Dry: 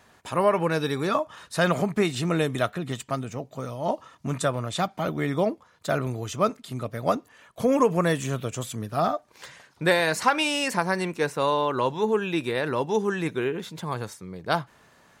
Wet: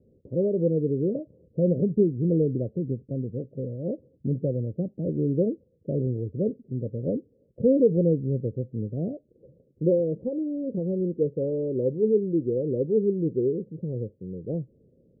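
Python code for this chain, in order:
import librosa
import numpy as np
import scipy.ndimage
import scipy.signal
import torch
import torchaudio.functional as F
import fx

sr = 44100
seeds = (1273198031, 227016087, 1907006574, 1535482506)

y = scipy.signal.sosfilt(scipy.signal.cheby1(6, 1.0, 530.0, 'lowpass', fs=sr, output='sos'), x)
y = y * librosa.db_to_amplitude(3.0)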